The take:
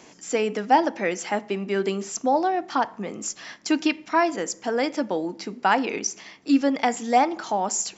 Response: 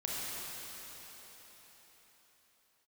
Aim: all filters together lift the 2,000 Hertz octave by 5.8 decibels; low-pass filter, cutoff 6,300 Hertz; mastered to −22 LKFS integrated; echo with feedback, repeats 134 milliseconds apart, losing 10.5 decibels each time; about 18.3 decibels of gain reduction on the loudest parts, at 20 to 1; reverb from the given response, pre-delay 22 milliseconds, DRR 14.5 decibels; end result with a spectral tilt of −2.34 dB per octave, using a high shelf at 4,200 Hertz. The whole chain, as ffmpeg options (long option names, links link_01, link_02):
-filter_complex "[0:a]lowpass=6300,equalizer=frequency=2000:width_type=o:gain=6,highshelf=frequency=4200:gain=6,acompressor=threshold=-30dB:ratio=20,aecho=1:1:134|268|402:0.299|0.0896|0.0269,asplit=2[link_01][link_02];[1:a]atrim=start_sample=2205,adelay=22[link_03];[link_02][link_03]afir=irnorm=-1:irlink=0,volume=-19.5dB[link_04];[link_01][link_04]amix=inputs=2:normalize=0,volume=12.5dB"